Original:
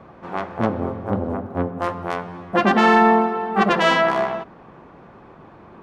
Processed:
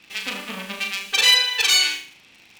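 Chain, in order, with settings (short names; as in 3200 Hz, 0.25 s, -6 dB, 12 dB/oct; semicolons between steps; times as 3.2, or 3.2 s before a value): de-hum 54.32 Hz, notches 31; in parallel at -5.5 dB: bit-crush 6-bit; on the sum: low shelf 270 Hz -10.5 dB; wide varispeed 2.25×; band shelf 800 Hz -14 dB 2.6 oct; on a send: flutter echo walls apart 6.4 m, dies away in 0.42 s; on the sum: hard clip -7.5 dBFS, distortion -20 dB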